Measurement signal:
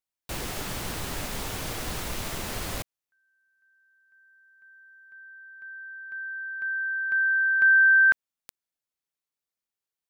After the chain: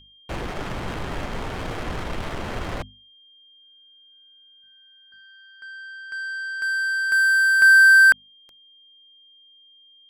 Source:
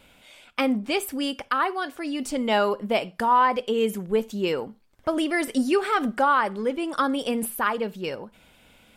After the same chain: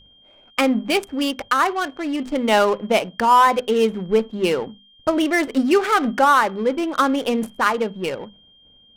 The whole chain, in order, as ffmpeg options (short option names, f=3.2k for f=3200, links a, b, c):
-af "agate=range=-12dB:threshold=-51dB:ratio=3:release=90:detection=rms,aeval=exprs='val(0)+0.00158*(sin(2*PI*50*n/s)+sin(2*PI*2*50*n/s)/2+sin(2*PI*3*50*n/s)/3+sin(2*PI*4*50*n/s)/4+sin(2*PI*5*50*n/s)/5)':c=same,adynamicsmooth=sensitivity=7.5:basefreq=520,bandreject=f=50:t=h:w=6,bandreject=f=100:t=h:w=6,bandreject=f=150:t=h:w=6,bandreject=f=200:t=h:w=6,bandreject=f=250:t=h:w=6,aeval=exprs='val(0)+0.00158*sin(2*PI*3200*n/s)':c=same,volume=5.5dB"